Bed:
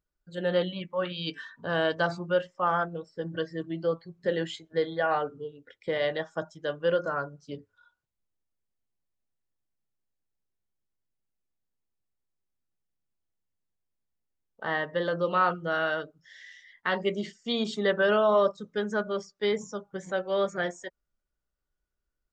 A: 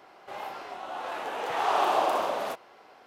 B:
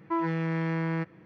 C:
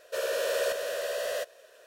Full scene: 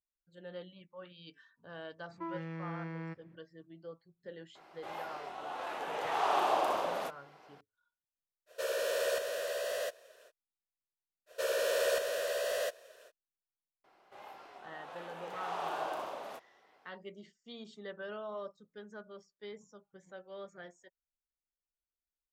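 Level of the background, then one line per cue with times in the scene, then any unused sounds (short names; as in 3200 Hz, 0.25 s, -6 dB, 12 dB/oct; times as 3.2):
bed -19.5 dB
2.1 add B -12.5 dB
4.55 add A -5 dB + downsampling 32000 Hz
8.46 add C -4 dB, fades 0.05 s + HPF 47 Hz
11.26 add C -2 dB, fades 0.05 s
13.84 add A -13 dB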